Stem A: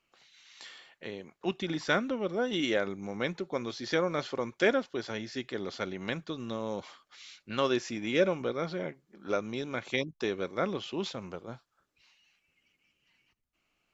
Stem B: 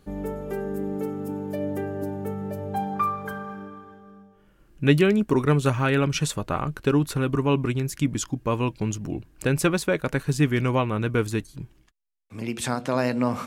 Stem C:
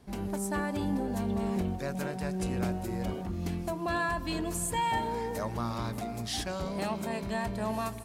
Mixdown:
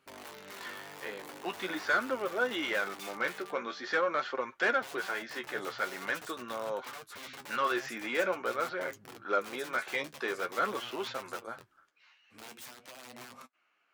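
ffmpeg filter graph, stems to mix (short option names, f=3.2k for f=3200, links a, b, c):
-filter_complex "[0:a]equalizer=f=1.5k:t=o:w=0.76:g=8.5,asplit=2[a][b];[b]highpass=f=720:p=1,volume=19dB,asoftclip=type=tanh:threshold=-8dB[c];[a][c]amix=inputs=2:normalize=0,lowpass=f=1.3k:p=1,volume=-6dB,volume=-3dB[d];[1:a]acompressor=threshold=-28dB:ratio=5,aeval=exprs='(mod(23.7*val(0)+1,2)-1)/23.7':c=same,volume=-8.5dB[e];[d][e]amix=inputs=2:normalize=0,highpass=f=450:p=1,flanger=delay=7.5:depth=6.3:regen=41:speed=0.45:shape=sinusoidal"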